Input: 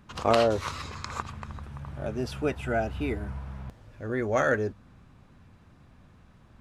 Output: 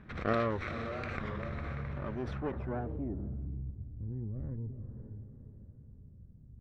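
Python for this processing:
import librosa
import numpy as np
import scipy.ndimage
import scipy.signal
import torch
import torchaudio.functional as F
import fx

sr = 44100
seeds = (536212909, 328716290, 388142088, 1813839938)

p1 = fx.lower_of_two(x, sr, delay_ms=0.53)
p2 = p1 + fx.echo_diffused(p1, sr, ms=508, feedback_pct=41, wet_db=-12.5, dry=0)
p3 = fx.filter_sweep_lowpass(p2, sr, from_hz=2100.0, to_hz=130.0, start_s=2.21, end_s=3.71, q=0.92)
p4 = fx.over_compress(p3, sr, threshold_db=-40.0, ratio=-1.0)
p5 = p3 + (p4 * librosa.db_to_amplitude(1.5))
p6 = fx.cheby_harmonics(p5, sr, harmonics=(6,), levels_db=(-30,), full_scale_db=-9.0)
p7 = fx.record_warp(p6, sr, rpm=33.33, depth_cents=160.0)
y = p7 * librosa.db_to_amplitude(-8.0)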